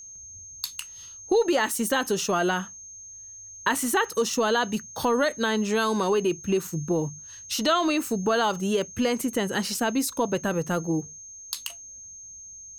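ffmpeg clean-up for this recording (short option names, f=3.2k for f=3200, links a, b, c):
-af "bandreject=f=6.4k:w=30"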